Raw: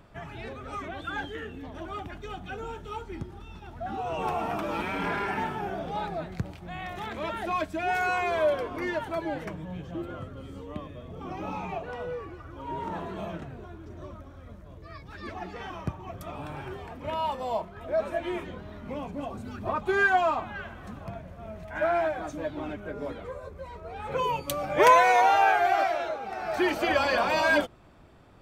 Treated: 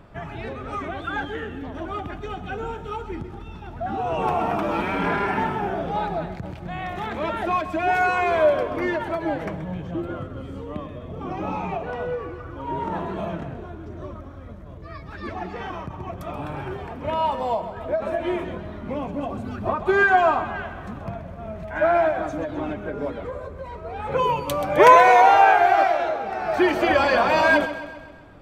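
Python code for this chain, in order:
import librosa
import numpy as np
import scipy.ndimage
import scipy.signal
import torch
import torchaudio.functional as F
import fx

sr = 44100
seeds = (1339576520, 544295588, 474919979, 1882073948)

y = fx.high_shelf(x, sr, hz=3300.0, db=-8.5)
y = fx.echo_feedback(y, sr, ms=130, feedback_pct=54, wet_db=-13)
y = fx.end_taper(y, sr, db_per_s=130.0)
y = y * 10.0 ** (7.0 / 20.0)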